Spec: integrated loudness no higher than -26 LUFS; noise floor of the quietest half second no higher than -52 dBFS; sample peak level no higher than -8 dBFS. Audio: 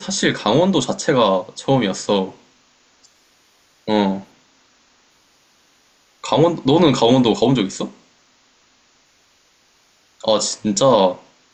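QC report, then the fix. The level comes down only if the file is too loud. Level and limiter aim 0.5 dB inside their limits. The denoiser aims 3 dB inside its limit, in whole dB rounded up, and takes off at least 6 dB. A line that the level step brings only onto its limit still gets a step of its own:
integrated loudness -17.5 LUFS: fail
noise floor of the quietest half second -57 dBFS: OK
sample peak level -3.0 dBFS: fail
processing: gain -9 dB

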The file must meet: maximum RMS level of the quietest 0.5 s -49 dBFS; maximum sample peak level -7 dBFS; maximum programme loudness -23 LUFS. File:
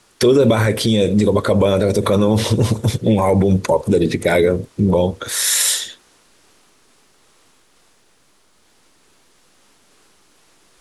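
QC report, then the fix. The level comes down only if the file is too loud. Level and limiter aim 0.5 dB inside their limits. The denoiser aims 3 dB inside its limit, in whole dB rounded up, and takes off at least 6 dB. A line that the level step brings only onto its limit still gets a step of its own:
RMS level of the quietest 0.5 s -56 dBFS: OK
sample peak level -5.5 dBFS: fail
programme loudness -16.0 LUFS: fail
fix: gain -7.5 dB

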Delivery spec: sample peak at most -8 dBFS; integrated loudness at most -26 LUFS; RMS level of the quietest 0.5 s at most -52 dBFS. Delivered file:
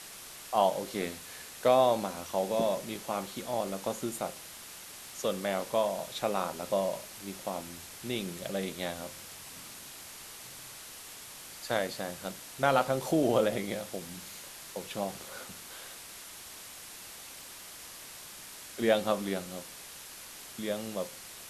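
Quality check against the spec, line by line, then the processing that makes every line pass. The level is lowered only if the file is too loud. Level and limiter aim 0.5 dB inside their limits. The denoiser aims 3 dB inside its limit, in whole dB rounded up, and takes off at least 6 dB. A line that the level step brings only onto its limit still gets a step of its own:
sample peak -10.0 dBFS: OK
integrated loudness -33.0 LUFS: OK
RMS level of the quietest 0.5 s -47 dBFS: fail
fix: denoiser 8 dB, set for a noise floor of -47 dBFS

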